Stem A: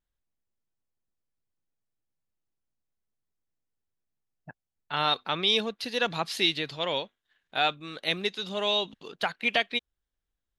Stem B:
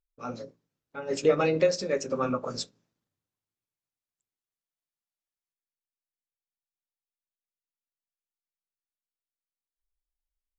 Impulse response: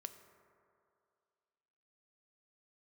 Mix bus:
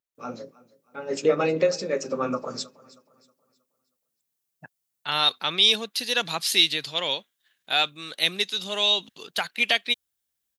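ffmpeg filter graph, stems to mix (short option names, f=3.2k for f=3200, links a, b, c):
-filter_complex "[0:a]highpass=96,crystalizer=i=4.5:c=0,adelay=150,volume=-2dB[a];[1:a]highpass=150,volume=1.5dB,asplit=2[b][c];[c]volume=-21dB,aecho=0:1:317|634|951|1268|1585:1|0.37|0.137|0.0507|0.0187[d];[a][b][d]amix=inputs=3:normalize=0"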